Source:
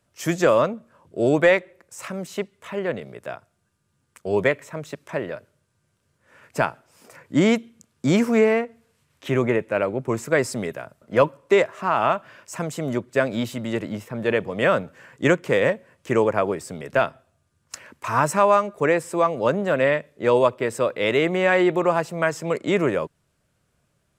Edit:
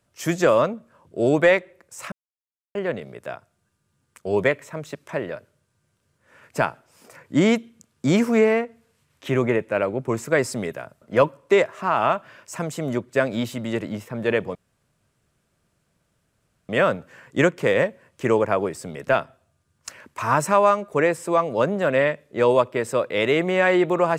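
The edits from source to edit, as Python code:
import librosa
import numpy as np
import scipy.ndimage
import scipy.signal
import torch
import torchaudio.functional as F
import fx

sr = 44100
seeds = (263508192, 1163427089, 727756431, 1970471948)

y = fx.edit(x, sr, fx.silence(start_s=2.12, length_s=0.63),
    fx.insert_room_tone(at_s=14.55, length_s=2.14), tone=tone)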